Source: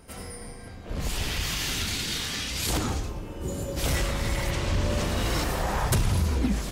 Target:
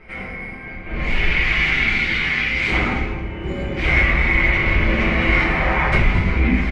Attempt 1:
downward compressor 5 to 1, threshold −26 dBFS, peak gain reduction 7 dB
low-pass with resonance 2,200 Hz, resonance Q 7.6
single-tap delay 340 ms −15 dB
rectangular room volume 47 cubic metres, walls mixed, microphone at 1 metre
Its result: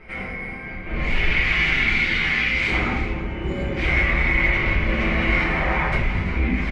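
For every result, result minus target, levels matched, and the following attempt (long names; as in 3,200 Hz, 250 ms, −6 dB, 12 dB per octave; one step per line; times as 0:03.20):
echo 118 ms late; downward compressor: peak gain reduction +7 dB
downward compressor 5 to 1, threshold −26 dBFS, peak gain reduction 7 dB
low-pass with resonance 2,200 Hz, resonance Q 7.6
single-tap delay 222 ms −15 dB
rectangular room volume 47 cubic metres, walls mixed, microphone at 1 metre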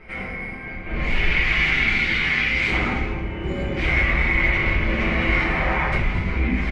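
downward compressor: peak gain reduction +7 dB
low-pass with resonance 2,200 Hz, resonance Q 7.6
single-tap delay 222 ms −15 dB
rectangular room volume 47 cubic metres, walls mixed, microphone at 1 metre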